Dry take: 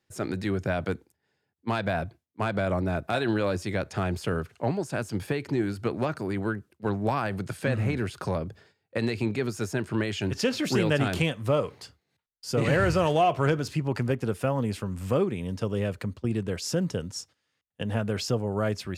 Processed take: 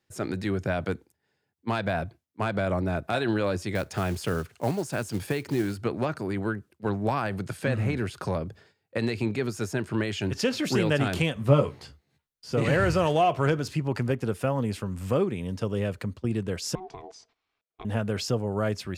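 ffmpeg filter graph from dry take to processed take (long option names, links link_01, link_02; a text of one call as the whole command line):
ffmpeg -i in.wav -filter_complex "[0:a]asettb=1/sr,asplit=3[link_01][link_02][link_03];[link_01]atrim=end=3.754[link_04];[link_02]atrim=start=3.75:end=5.76,asetpts=PTS-STARTPTS,afade=type=in:duration=0.004:curve=qsin,afade=type=out:start_time=2.006:duration=0.004:curve=qsin,highshelf=frequency=5100:gain=5,acrusher=bits=5:mode=log:mix=0:aa=0.000001[link_05];[link_03]atrim=start=5.756[link_06];[link_04][link_05]acrossfade=duration=0.004:curve1=hsin:curve2=qsin[link_07];[link_07][link_06]acrossfade=duration=0.004:curve1=qsin:curve2=hsin,asettb=1/sr,asplit=3[link_08][link_09][link_10];[link_08]atrim=end=11.354[link_11];[link_09]atrim=start=11.35:end=12.53,asetpts=PTS-STARTPTS,afade=type=in:duration=0.004:curve=qsin,afade=type=out:start_time=1.176:duration=0.004:curve=qsin,acrossover=split=4000[link_12][link_13];[link_13]acompressor=threshold=-50dB:ratio=4:attack=1:release=60[link_14];[link_12][link_14]amix=inputs=2:normalize=0,lowshelf=frequency=220:gain=8,asplit=2[link_15][link_16];[link_16]adelay=14,volume=-3.5dB[link_17];[link_15][link_17]amix=inputs=2:normalize=0,atrim=end_sample=52038[link_18];[link_10]atrim=start=12.526[link_19];[link_11][link_18]acrossfade=duration=0.004:curve1=hsin:curve2=qsin[link_20];[link_20][link_19]acrossfade=duration=0.004:curve1=qsin:curve2=hsin,asettb=1/sr,asplit=3[link_21][link_22][link_23];[link_21]atrim=end=16.754[link_24];[link_22]atrim=start=16.75:end=17.85,asetpts=PTS-STARTPTS,afade=type=in:duration=0.004:curve=qsin,afade=type=out:start_time=1.096:duration=0.004:curve=qsin,acompressor=threshold=-36dB:ratio=4:attack=3.2:release=140:knee=1:detection=peak,aeval=exprs='val(0)*sin(2*PI*560*n/s)':channel_layout=same,lowpass=4000[link_25];[link_23]atrim=start=17.846[link_26];[link_24][link_25]acrossfade=duration=0.004:curve1=hsin:curve2=qsin[link_27];[link_27][link_26]acrossfade=duration=0.004:curve1=qsin:curve2=hsin" out.wav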